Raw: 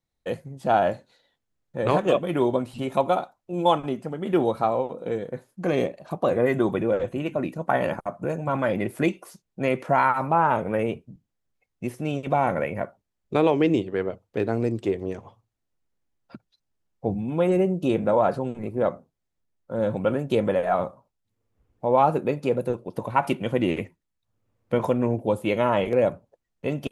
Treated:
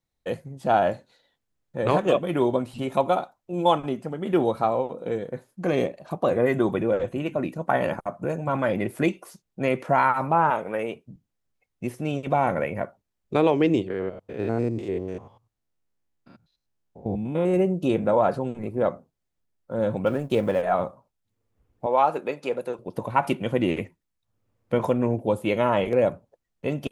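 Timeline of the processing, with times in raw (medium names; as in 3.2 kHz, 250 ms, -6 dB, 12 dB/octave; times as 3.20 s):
10.50–11.06 s: high-pass 480 Hz 6 dB/octave
13.90–17.54 s: spectrogram pixelated in time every 100 ms
20.06–20.62 s: companding laws mixed up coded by A
21.86–22.79 s: frequency weighting A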